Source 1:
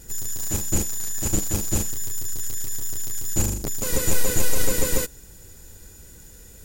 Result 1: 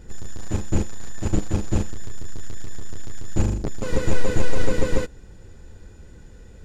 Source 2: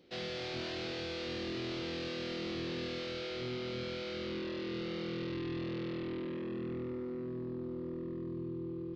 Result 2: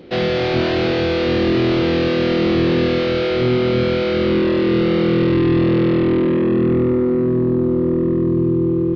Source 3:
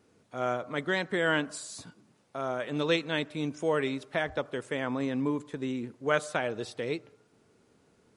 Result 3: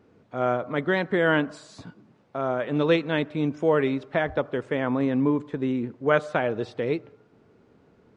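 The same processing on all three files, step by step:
head-to-tape spacing loss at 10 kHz 26 dB
normalise the peak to −6 dBFS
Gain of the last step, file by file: +4.0, +24.0, +8.0 decibels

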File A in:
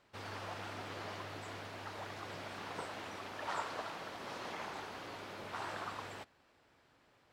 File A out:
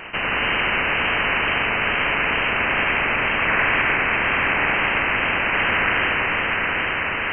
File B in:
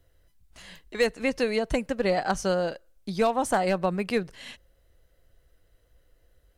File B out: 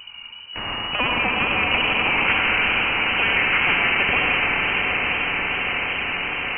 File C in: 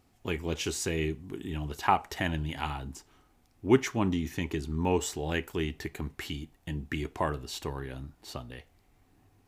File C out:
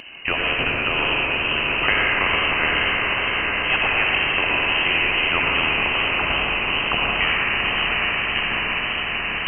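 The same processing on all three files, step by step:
downward compressor 1.5 to 1, threshold −32 dBFS
comb and all-pass reverb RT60 1.9 s, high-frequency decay 0.6×, pre-delay 45 ms, DRR −2.5 dB
voice inversion scrambler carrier 2,900 Hz
on a send: feedback delay with all-pass diffusion 802 ms, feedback 60%, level −5.5 dB
on the sum: tape wow and flutter 27 cents
every bin compressed towards the loudest bin 2 to 1
loudness normalisation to −19 LKFS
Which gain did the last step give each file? +16.5, +5.0, +9.0 decibels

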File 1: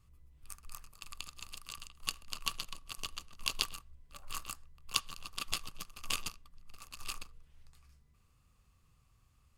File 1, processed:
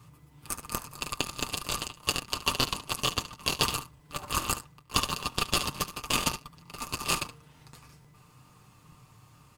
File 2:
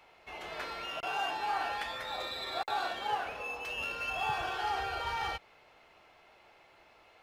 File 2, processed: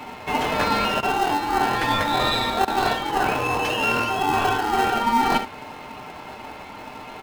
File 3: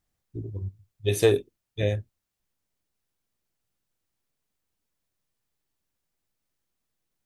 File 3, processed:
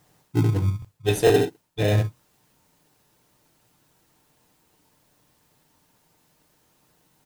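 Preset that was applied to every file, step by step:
high-pass filter 95 Hz 24 dB per octave
parametric band 910 Hz +10 dB 0.5 octaves
single-tap delay 72 ms −14.5 dB
reversed playback
downward compressor 6 to 1, threshold −38 dBFS
reversed playback
comb filter 6.6 ms, depth 60%
in parallel at −6 dB: decimation without filtering 38×
on the sum: regular buffer underruns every 0.45 s, samples 1,024, repeat, from 0:00.80
normalise the peak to −6 dBFS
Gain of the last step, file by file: +12.5, +17.0, +17.0 decibels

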